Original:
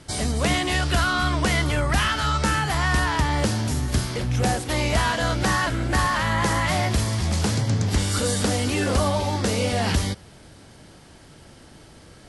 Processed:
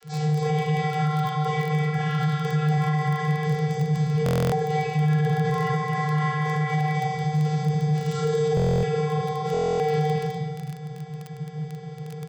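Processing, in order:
downward compressor, threshold −28 dBFS, peak gain reduction 11.5 dB
0:04.89–0:05.31: low-shelf EQ 360 Hz +11 dB
0:08.03–0:08.51: comb filter 6.6 ms, depth 99%
rectangular room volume 330 cubic metres, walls mixed, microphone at 3.9 metres
channel vocoder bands 32, square 152 Hz
repeating echo 246 ms, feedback 30%, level −3 dB
brickwall limiter −16 dBFS, peak gain reduction 8.5 dB
surface crackle 19 per second −26 dBFS
buffer that repeats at 0:04.24/0:08.55/0:09.52, samples 1,024, times 11

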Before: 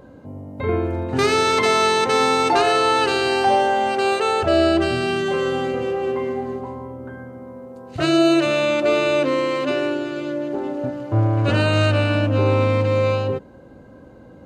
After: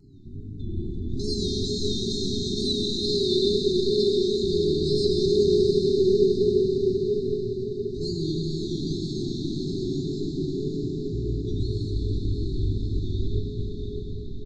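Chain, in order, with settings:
sub-octave generator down 1 octave, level −1 dB
low-pass filter 6,800 Hz 24 dB per octave
brick-wall band-stop 390–3,500 Hz
comb filter 1 ms, depth 96%
downward compressor, threshold −18 dBFS, peak gain reduction 11.5 dB
tuned comb filter 390 Hz, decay 0.24 s, harmonics all, mix 90%
tape wow and flutter 130 cents
feedback delay with all-pass diffusion 692 ms, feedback 43%, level −6 dB
convolution reverb RT60 5.6 s, pre-delay 94 ms, DRR −1.5 dB
level +6 dB

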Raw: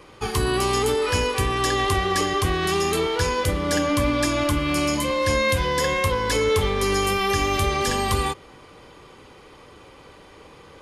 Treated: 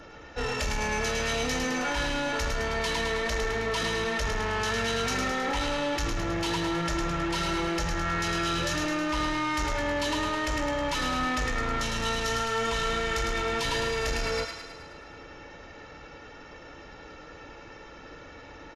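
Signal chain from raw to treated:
low-shelf EQ 460 Hz −4.5 dB
comb filter 1.3 ms, depth 61%
in parallel at −3 dB: compressor whose output falls as the input rises −27 dBFS
on the sum: soft clipping −21 dBFS, distortion −11 dB
on a send: delay with a high-pass on its return 61 ms, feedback 59%, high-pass 1,800 Hz, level −4 dB
on the sum: wrong playback speed 78 rpm record played at 45 rpm
level −4.5 dB

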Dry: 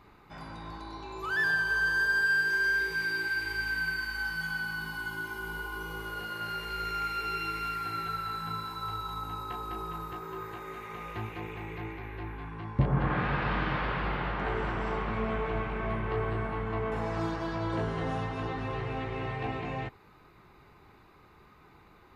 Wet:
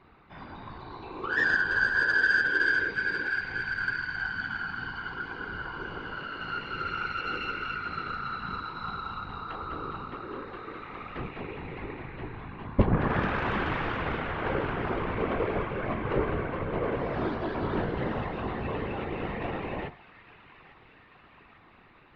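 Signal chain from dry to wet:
low-pass filter 3,800 Hz 24 dB per octave
hum removal 46.17 Hz, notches 28
dynamic equaliser 400 Hz, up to +4 dB, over −45 dBFS, Q 1.9
delay with a high-pass on its return 848 ms, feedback 66%, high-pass 1,500 Hz, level −14 dB
harmonic generator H 3 −14 dB, 8 −44 dB, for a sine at −13.5 dBFS
random phases in short frames
level +8 dB

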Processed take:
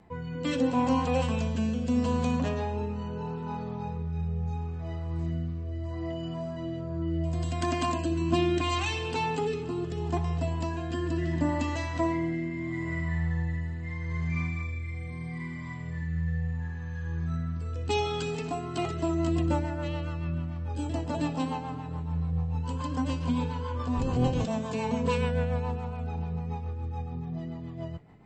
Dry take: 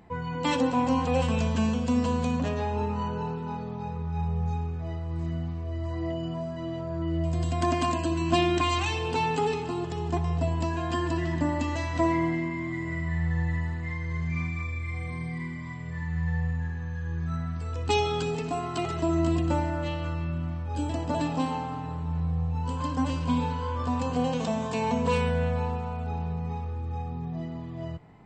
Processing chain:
0:23.96–0:24.45: sub-octave generator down 1 octave, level +3 dB
rotating-speaker cabinet horn 0.75 Hz, later 7 Hz, at 0:18.39

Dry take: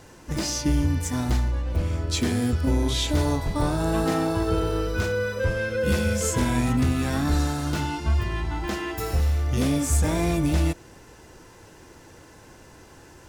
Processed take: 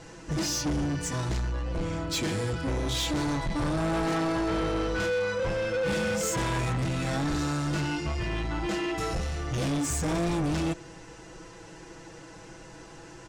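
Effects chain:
low-pass filter 8,600 Hz 24 dB per octave
comb filter 6.1 ms, depth 82%
soft clipping −25 dBFS, distortion −8 dB

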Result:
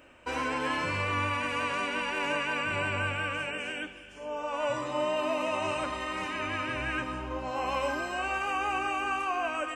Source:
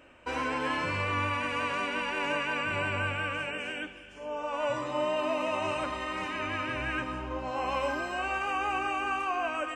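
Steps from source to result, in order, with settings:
high-shelf EQ 7,100 Hz +6.5 dB

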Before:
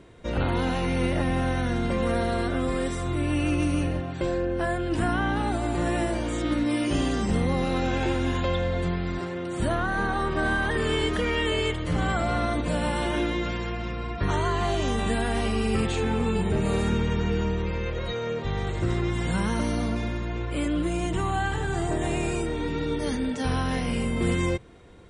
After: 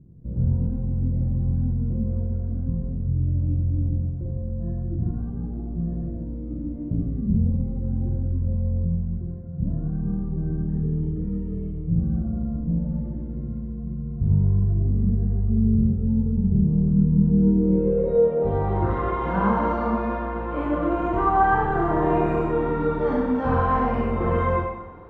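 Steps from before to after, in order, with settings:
low-pass filter sweep 150 Hz → 1,100 Hz, 0:16.93–0:18.91
four-comb reverb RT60 0.98 s, combs from 32 ms, DRR −3 dB

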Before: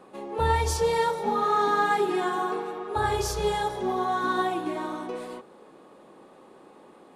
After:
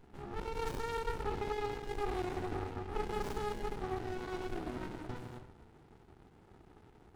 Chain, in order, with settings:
Butterworth high-pass 330 Hz 48 dB per octave
brickwall limiter −21 dBFS, peak gain reduction 8.5 dB
notch comb filter 1,100 Hz
on a send at −7.5 dB: convolution reverb RT60 0.55 s, pre-delay 4 ms
on the sum: windowed peak hold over 65 samples
level −2.5 dB

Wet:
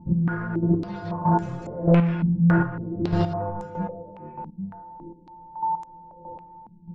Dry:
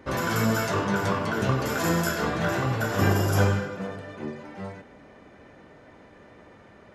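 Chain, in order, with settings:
low-pass that shuts in the quiet parts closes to 570 Hz, open at −21 dBFS
spectral tilt −4 dB per octave
steady tone 890 Hz −27 dBFS
in parallel at −5.5 dB: wave folding −12 dBFS
on the sum: stiff-string resonator 170 Hz, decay 0.27 s, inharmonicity 0.002
gain into a clipping stage and back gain 21 dB
square-wave tremolo 1.6 Hz, depth 65%, duty 20%
on a send at −15 dB: convolution reverb RT60 1.6 s, pre-delay 22 ms
on the sum: low-pass on a step sequencer 3.6 Hz 200–7,200 Hz
level +5 dB

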